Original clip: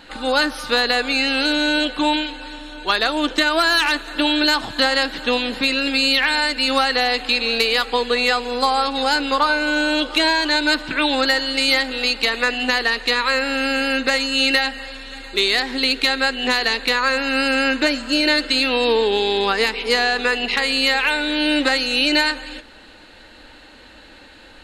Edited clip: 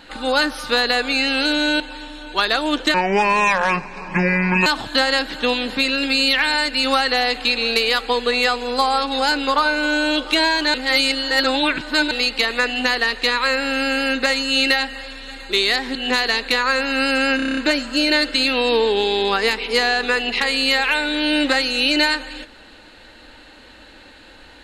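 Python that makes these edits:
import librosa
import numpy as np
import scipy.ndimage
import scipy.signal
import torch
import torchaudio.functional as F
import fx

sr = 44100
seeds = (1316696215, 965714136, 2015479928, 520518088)

y = fx.edit(x, sr, fx.cut(start_s=1.8, length_s=0.51),
    fx.speed_span(start_s=3.45, length_s=1.05, speed=0.61),
    fx.reverse_span(start_s=10.58, length_s=1.37),
    fx.cut(start_s=15.79, length_s=0.53),
    fx.stutter(start_s=17.73, slice_s=0.03, count=8), tone=tone)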